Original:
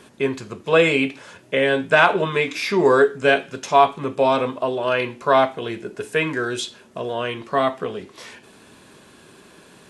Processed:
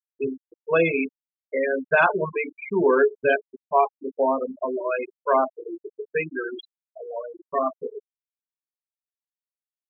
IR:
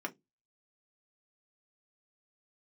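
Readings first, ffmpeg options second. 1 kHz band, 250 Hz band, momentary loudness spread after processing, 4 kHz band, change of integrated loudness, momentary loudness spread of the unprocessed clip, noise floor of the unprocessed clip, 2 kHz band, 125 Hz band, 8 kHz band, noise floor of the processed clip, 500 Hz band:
-5.0 dB, -5.0 dB, 17 LU, under -15 dB, -4.5 dB, 14 LU, -50 dBFS, -5.0 dB, -9.0 dB, under -40 dB, under -85 dBFS, -4.0 dB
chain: -filter_complex "[0:a]asplit=2[s0][s1];[1:a]atrim=start_sample=2205,adelay=21[s2];[s1][s2]afir=irnorm=-1:irlink=0,volume=0.224[s3];[s0][s3]amix=inputs=2:normalize=0,afftfilt=real='re*gte(hypot(re,im),0.282)':imag='im*gte(hypot(re,im),0.282)':win_size=1024:overlap=0.75,aeval=exprs='0.891*(cos(1*acos(clip(val(0)/0.891,-1,1)))-cos(1*PI/2))+0.0141*(cos(3*acos(clip(val(0)/0.891,-1,1)))-cos(3*PI/2))':c=same,volume=0.668"

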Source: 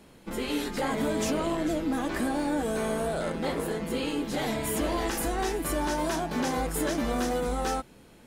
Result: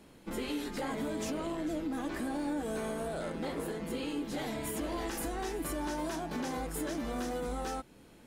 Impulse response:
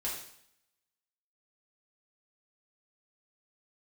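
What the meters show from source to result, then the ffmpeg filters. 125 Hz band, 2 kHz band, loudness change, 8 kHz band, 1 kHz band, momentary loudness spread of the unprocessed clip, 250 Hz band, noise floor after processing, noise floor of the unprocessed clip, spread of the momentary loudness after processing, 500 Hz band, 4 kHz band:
-7.5 dB, -8.0 dB, -7.0 dB, -7.5 dB, -8.0 dB, 3 LU, -6.0 dB, -57 dBFS, -54 dBFS, 2 LU, -7.5 dB, -8.0 dB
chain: -filter_complex "[0:a]asplit=2[s0][s1];[s1]asoftclip=type=tanh:threshold=0.0398,volume=0.316[s2];[s0][s2]amix=inputs=2:normalize=0,equalizer=f=300:w=4.1:g=3.5,alimiter=limit=0.0841:level=0:latency=1:release=282,volume=0.501"

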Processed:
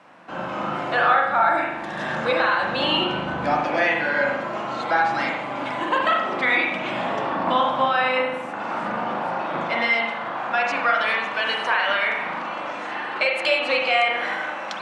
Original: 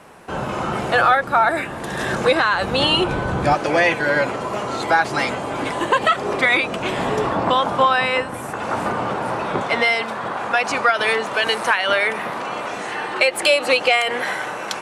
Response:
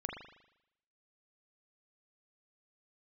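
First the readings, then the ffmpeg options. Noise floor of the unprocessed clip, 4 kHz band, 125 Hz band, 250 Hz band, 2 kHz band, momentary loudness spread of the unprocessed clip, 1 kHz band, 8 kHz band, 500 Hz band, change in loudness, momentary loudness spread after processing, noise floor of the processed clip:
-30 dBFS, -4.5 dB, -8.5 dB, -4.0 dB, -2.5 dB, 10 LU, -2.0 dB, under -10 dB, -4.5 dB, -3.0 dB, 9 LU, -31 dBFS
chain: -filter_complex "[0:a]highpass=200,lowpass=4600,equalizer=f=420:t=o:w=0.27:g=-13[s0];[1:a]atrim=start_sample=2205[s1];[s0][s1]afir=irnorm=-1:irlink=0,volume=0.708"

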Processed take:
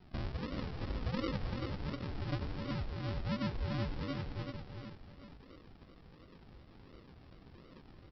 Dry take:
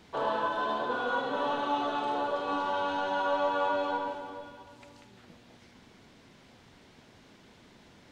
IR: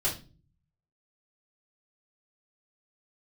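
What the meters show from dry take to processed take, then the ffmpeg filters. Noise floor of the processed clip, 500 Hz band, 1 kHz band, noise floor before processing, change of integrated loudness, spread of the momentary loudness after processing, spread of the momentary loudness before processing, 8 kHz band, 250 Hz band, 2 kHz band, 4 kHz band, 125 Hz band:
-58 dBFS, -13.5 dB, -19.0 dB, -58 dBFS, -9.0 dB, 21 LU, 7 LU, no reading, -1.0 dB, -13.0 dB, -7.5 dB, +16.5 dB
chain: -filter_complex "[0:a]equalizer=f=1700:w=6.5:g=8,bandreject=f=60:t=h:w=6,bandreject=f=120:t=h:w=6,bandreject=f=180:t=h:w=6,bandreject=f=240:t=h:w=6,bandreject=f=300:t=h:w=6,bandreject=f=360:t=h:w=6,bandreject=f=420:t=h:w=6,bandreject=f=480:t=h:w=6,acrossover=split=360|1300[s0][s1][s2];[s0]acompressor=threshold=0.00398:ratio=4[s3];[s1]acompressor=threshold=0.00631:ratio=4[s4];[s2]acompressor=threshold=0.00282:ratio=4[s5];[s3][s4][s5]amix=inputs=3:normalize=0,asplit=3[s6][s7][s8];[s6]bandpass=f=530:t=q:w=8,volume=1[s9];[s7]bandpass=f=1840:t=q:w=8,volume=0.501[s10];[s8]bandpass=f=2480:t=q:w=8,volume=0.355[s11];[s9][s10][s11]amix=inputs=3:normalize=0,aresample=11025,acrusher=samples=19:mix=1:aa=0.000001:lfo=1:lforange=11.4:lforate=1.4,aresample=44100,aecho=1:1:386:0.531,volume=3.98"

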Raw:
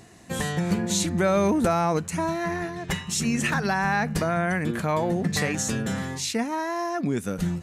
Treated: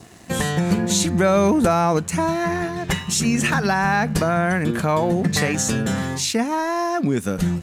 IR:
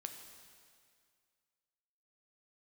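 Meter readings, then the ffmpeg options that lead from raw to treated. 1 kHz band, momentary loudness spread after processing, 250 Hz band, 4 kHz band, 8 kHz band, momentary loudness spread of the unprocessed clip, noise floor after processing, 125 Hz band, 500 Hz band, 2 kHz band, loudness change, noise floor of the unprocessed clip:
+5.0 dB, 6 LU, +5.5 dB, +5.5 dB, +5.5 dB, 6 LU, -35 dBFS, +5.5 dB, +5.0 dB, +4.5 dB, +5.0 dB, -41 dBFS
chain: -filter_complex "[0:a]adynamicequalizer=threshold=0.00447:dfrequency=2000:dqfactor=4.7:tfrequency=2000:tqfactor=4.7:attack=5:release=100:ratio=0.375:range=2:mode=cutabove:tftype=bell,asplit=2[s0][s1];[s1]acompressor=threshold=0.0224:ratio=6,volume=0.891[s2];[s0][s2]amix=inputs=2:normalize=0,aeval=exprs='sgn(val(0))*max(abs(val(0))-0.00282,0)':c=same,volume=1.5"

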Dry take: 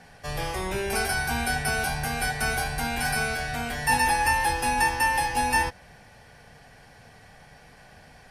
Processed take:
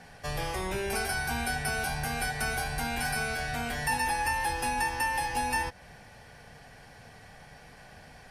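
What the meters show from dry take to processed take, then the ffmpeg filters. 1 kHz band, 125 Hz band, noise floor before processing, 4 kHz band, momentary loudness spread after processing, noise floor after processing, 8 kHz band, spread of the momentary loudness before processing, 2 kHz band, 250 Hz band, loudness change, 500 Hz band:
-5.5 dB, -4.0 dB, -52 dBFS, -4.5 dB, 4 LU, -52 dBFS, -5.0 dB, 8 LU, -5.0 dB, -4.0 dB, -5.0 dB, -4.0 dB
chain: -af "acompressor=threshold=0.0282:ratio=2"

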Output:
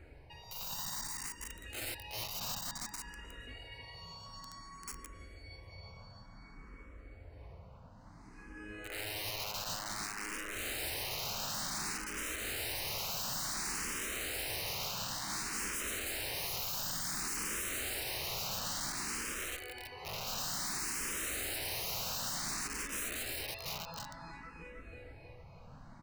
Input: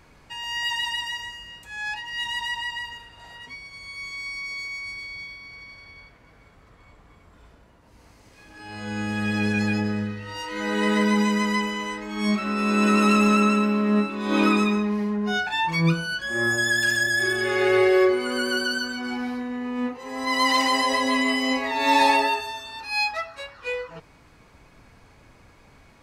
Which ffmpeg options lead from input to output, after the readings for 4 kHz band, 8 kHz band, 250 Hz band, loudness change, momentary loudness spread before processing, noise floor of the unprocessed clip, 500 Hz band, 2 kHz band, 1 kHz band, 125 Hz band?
-10.5 dB, 0.0 dB, -27.0 dB, -14.0 dB, 17 LU, -54 dBFS, -21.5 dB, -17.5 dB, -19.0 dB, -17.0 dB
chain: -filter_complex "[0:a]acrossover=split=1100[s0][s1];[s0]acompressor=threshold=0.0251:ratio=10[s2];[s2][s1]amix=inputs=2:normalize=0,highshelf=f=2900:g=-10.5,tremolo=f=1.2:d=0.41,aecho=1:1:317|634|951|1268|1585|1902|2219|2536:0.631|0.366|0.212|0.123|0.0714|0.0414|0.024|0.0139,aeval=exprs='(mod(31.6*val(0)+1,2)-1)/31.6':c=same,bandreject=f=3400:w=7,afftfilt=real='re*lt(hypot(re,im),0.0398)':imag='im*lt(hypot(re,im),0.0398)':win_size=1024:overlap=0.75,lowshelf=f=160:g=6,asplit=2[s3][s4];[s4]afreqshift=0.56[s5];[s3][s5]amix=inputs=2:normalize=1"

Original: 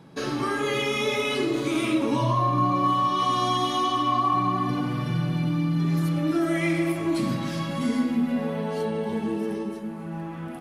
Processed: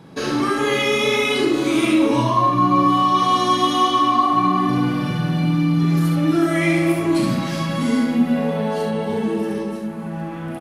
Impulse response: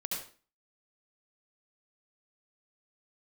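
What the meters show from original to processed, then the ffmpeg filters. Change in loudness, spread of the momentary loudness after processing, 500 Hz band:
+6.5 dB, 7 LU, +6.5 dB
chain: -af "aecho=1:1:38|69:0.501|0.531,volume=1.78"

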